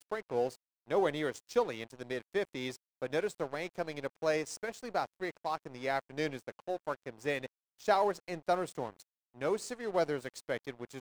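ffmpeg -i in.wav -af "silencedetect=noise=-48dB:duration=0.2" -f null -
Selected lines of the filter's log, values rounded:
silence_start: 0.55
silence_end: 0.88 | silence_duration: 0.33
silence_start: 2.76
silence_end: 3.02 | silence_duration: 0.26
silence_start: 7.47
silence_end: 7.80 | silence_duration: 0.33
silence_start: 9.02
silence_end: 9.35 | silence_duration: 0.33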